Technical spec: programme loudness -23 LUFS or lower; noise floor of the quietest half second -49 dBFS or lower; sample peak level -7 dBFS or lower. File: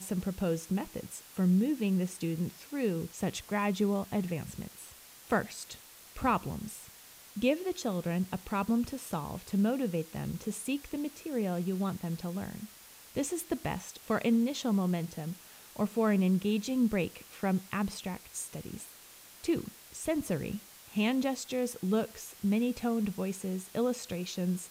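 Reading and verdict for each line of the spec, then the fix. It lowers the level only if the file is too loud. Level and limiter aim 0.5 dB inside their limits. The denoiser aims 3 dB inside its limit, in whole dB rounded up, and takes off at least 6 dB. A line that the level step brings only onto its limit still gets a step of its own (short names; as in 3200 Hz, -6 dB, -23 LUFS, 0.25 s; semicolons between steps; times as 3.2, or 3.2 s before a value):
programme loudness -33.0 LUFS: OK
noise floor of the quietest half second -54 dBFS: OK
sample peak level -15.0 dBFS: OK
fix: none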